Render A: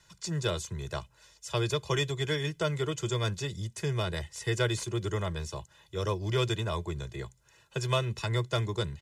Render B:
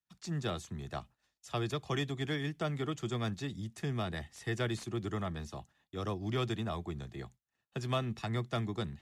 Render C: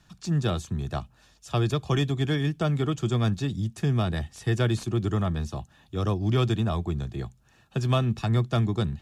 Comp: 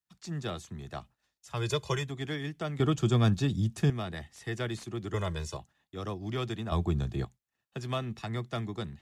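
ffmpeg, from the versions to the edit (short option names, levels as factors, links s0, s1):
-filter_complex "[0:a]asplit=2[s0][s1];[2:a]asplit=2[s2][s3];[1:a]asplit=5[s4][s5][s6][s7][s8];[s4]atrim=end=1.7[s9];[s0]atrim=start=1.46:end=2.13[s10];[s5]atrim=start=1.89:end=2.802[s11];[s2]atrim=start=2.798:end=3.902[s12];[s6]atrim=start=3.898:end=5.142[s13];[s1]atrim=start=5.138:end=5.572[s14];[s7]atrim=start=5.568:end=6.722[s15];[s3]atrim=start=6.718:end=7.252[s16];[s8]atrim=start=7.248[s17];[s9][s10]acrossfade=d=0.24:c1=tri:c2=tri[s18];[s18][s11]acrossfade=d=0.24:c1=tri:c2=tri[s19];[s19][s12]acrossfade=d=0.004:c1=hsin:c2=hsin[s20];[s20][s13]acrossfade=d=0.004:c1=hsin:c2=hsin[s21];[s21][s14]acrossfade=d=0.004:c1=hsin:c2=hsin[s22];[s22][s15]acrossfade=d=0.004:c1=hsin:c2=hsin[s23];[s23][s16]acrossfade=d=0.004:c1=hsin:c2=hsin[s24];[s24][s17]acrossfade=d=0.004:c1=hsin:c2=hsin"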